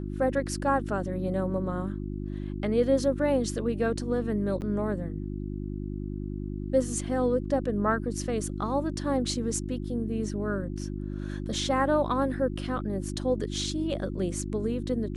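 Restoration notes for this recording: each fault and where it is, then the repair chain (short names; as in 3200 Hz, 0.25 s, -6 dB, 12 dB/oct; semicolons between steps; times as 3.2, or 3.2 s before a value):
hum 50 Hz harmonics 7 -34 dBFS
4.61–4.62 gap 9.3 ms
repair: de-hum 50 Hz, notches 7; interpolate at 4.61, 9.3 ms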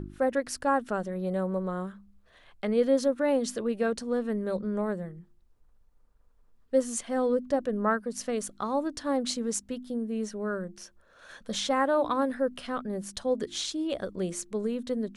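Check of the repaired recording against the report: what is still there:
none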